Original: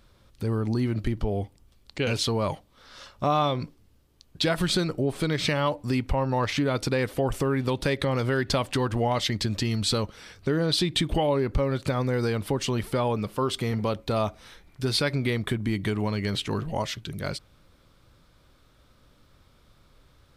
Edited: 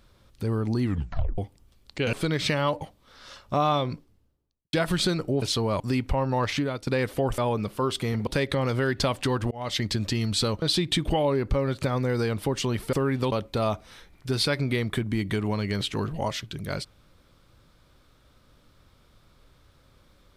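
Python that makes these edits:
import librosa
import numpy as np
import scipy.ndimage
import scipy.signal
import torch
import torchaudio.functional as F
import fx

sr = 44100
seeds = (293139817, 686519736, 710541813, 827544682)

y = fx.studio_fade_out(x, sr, start_s=3.47, length_s=0.96)
y = fx.edit(y, sr, fx.tape_stop(start_s=0.83, length_s=0.55),
    fx.swap(start_s=2.13, length_s=0.38, other_s=5.12, other_length_s=0.68),
    fx.fade_out_to(start_s=6.54, length_s=0.33, floor_db=-13.5),
    fx.swap(start_s=7.38, length_s=0.39, other_s=12.97, other_length_s=0.89),
    fx.fade_in_span(start_s=9.01, length_s=0.28),
    fx.cut(start_s=10.12, length_s=0.54), tone=tone)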